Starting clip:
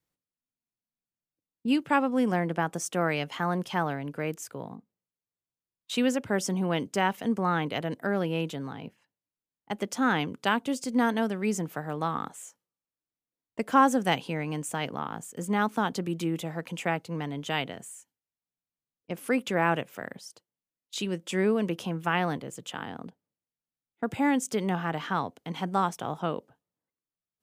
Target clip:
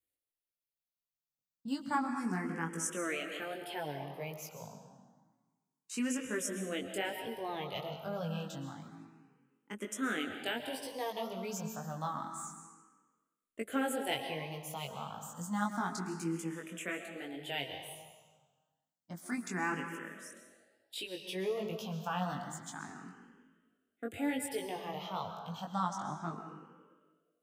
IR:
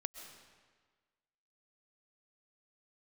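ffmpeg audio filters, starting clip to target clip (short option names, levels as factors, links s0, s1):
-filter_complex "[0:a]asettb=1/sr,asplit=3[s0][s1][s2];[s0]atrim=end=25.694[s3];[s1]atrim=start=25.69:end=26.33,asetpts=PTS-STARTPTS,afade=t=in:d=0.004:c=qsin,afade=t=out:st=0.636:d=0.004:c=qsin,lowpass=7100[s4];[s2]atrim=start=26.326[s5];[s3][s4]acrossfade=d=0.004:c1=hsin:c2=qsin[s6];[s6][s5]acrossfade=d=0.004:c1=qsin:c2=hsin[s7];[1:a]atrim=start_sample=2205[s8];[s7][s8]afir=irnorm=-1:irlink=0,flanger=delay=18:depth=3.9:speed=1.1,highshelf=f=4900:g=10,asplit=2[s9][s10];[s10]afreqshift=0.29[s11];[s9][s11]amix=inputs=2:normalize=1,volume=0.794"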